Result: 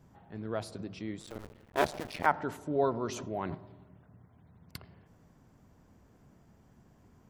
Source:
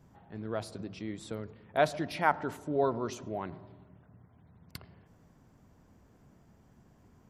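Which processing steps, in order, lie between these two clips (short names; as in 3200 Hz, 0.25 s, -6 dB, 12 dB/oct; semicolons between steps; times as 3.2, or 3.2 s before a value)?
1.2–2.26 cycle switcher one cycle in 2, muted; 3.07–3.55 sustainer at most 22 dB/s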